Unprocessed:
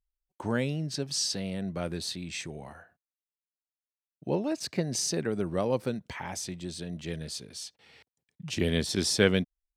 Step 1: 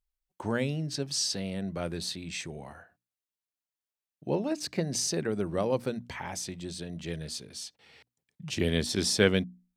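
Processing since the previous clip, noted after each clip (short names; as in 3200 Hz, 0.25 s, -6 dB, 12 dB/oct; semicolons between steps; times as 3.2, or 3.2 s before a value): notches 60/120/180/240/300 Hz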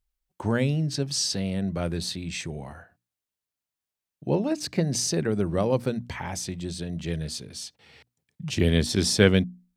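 bell 88 Hz +6.5 dB 2.4 oct; gain +3 dB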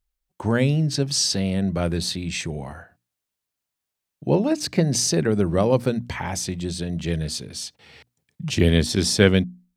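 AGC gain up to 4 dB; gain +1 dB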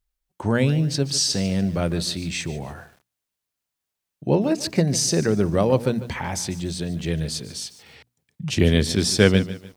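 lo-fi delay 0.147 s, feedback 35%, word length 7-bit, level -15 dB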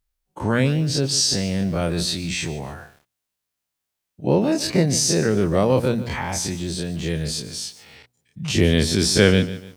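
spectral dilation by 60 ms; gain -2 dB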